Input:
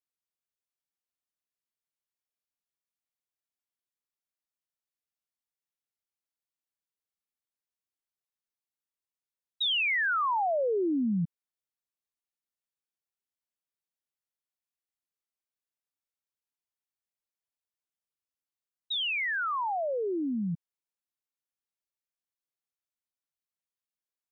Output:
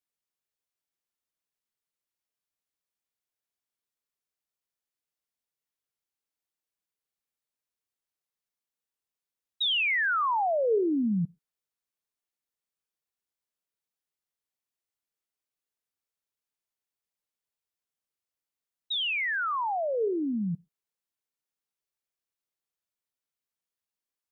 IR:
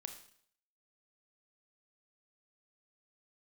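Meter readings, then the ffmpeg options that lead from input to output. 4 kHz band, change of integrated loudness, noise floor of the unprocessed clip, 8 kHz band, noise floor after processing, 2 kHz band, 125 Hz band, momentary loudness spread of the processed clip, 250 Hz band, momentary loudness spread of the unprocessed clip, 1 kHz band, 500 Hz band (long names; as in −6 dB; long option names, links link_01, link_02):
+1.0 dB, +1.5 dB, below −85 dBFS, can't be measured, below −85 dBFS, +1.0 dB, +1.0 dB, 8 LU, +1.5 dB, 8 LU, +1.5 dB, +2.5 dB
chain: -filter_complex "[0:a]asplit=2[link_01][link_02];[link_02]equalizer=frequency=440:width=4:gain=14.5[link_03];[1:a]atrim=start_sample=2205,atrim=end_sample=6174[link_04];[link_03][link_04]afir=irnorm=-1:irlink=0,volume=-12dB[link_05];[link_01][link_05]amix=inputs=2:normalize=0"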